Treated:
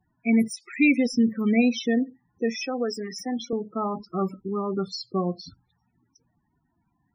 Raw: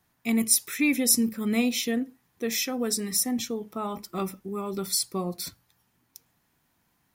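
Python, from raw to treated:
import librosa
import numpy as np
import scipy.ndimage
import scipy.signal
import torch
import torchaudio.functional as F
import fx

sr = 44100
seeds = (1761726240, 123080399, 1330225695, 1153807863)

y = fx.dead_time(x, sr, dead_ms=0.054)
y = fx.spec_topn(y, sr, count=16)
y = fx.highpass(y, sr, hz=310.0, slope=12, at=(2.62, 3.53))
y = F.gain(torch.from_numpy(y), 4.5).numpy()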